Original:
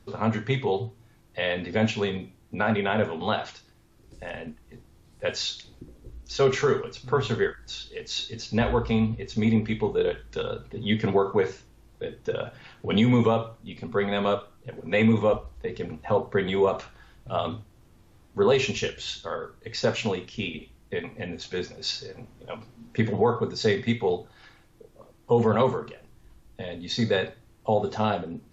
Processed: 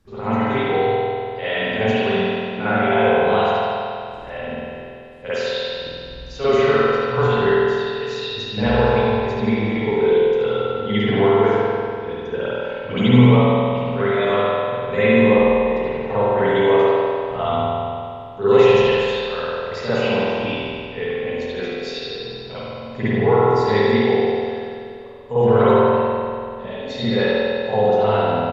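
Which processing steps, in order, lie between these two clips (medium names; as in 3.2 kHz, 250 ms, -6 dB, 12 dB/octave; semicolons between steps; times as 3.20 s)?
feedback delay 73 ms, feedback 58%, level -7.5 dB; reverberation RT60 2.4 s, pre-delay 48 ms, DRR -15 dB; trim -7.5 dB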